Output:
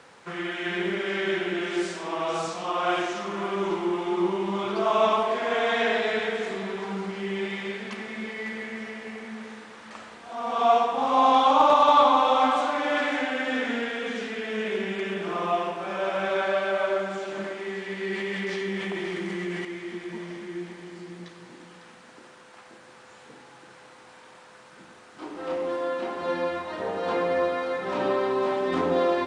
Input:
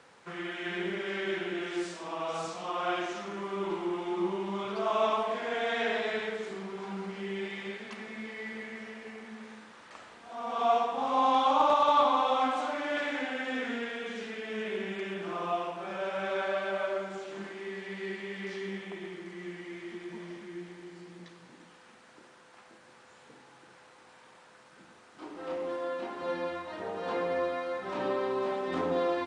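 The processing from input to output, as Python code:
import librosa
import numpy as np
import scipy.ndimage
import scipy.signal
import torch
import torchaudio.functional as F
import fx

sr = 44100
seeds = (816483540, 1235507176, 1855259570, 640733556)

p1 = x + fx.echo_single(x, sr, ms=551, db=-11.5, dry=0)
p2 = fx.env_flatten(p1, sr, amount_pct=70, at=(18.12, 19.65))
y = p2 * librosa.db_to_amplitude(6.0)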